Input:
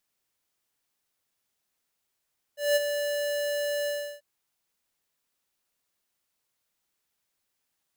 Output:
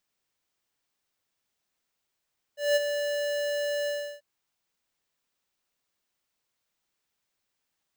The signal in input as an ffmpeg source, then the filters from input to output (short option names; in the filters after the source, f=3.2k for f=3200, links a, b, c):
-f lavfi -i "aevalsrc='0.0891*(2*lt(mod(582*t,1),0.5)-1)':d=1.638:s=44100,afade=t=in:d=0.189,afade=t=out:st=0.189:d=0.027:silence=0.398,afade=t=out:st=1.3:d=0.338"
-af "equalizer=f=12k:w=1.3:g=-9.5"